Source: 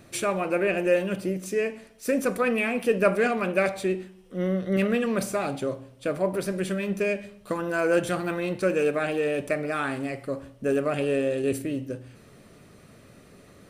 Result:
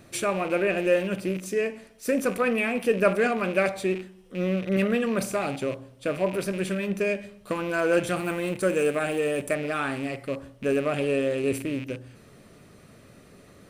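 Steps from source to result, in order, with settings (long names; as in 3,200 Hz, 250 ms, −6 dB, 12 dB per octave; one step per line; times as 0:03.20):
loose part that buzzes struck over −37 dBFS, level −30 dBFS
0:08.16–0:09.55: high shelf with overshoot 6,600 Hz +6.5 dB, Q 1.5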